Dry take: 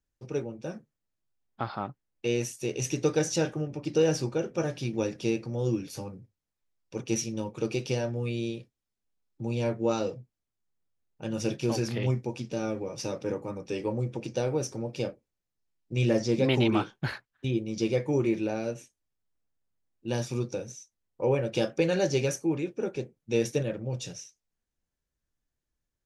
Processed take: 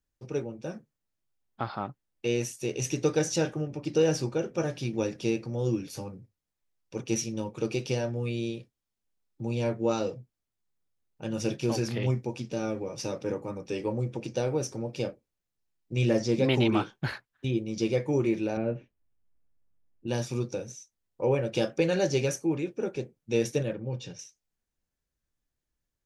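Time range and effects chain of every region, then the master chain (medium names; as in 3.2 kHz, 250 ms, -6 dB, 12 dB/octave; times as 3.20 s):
18.57–20.07 s: low-pass 2.8 kHz 24 dB/octave + tilt EQ -2 dB/octave
23.73–24.19 s: low-pass 4.1 kHz + comb of notches 660 Hz
whole clip: none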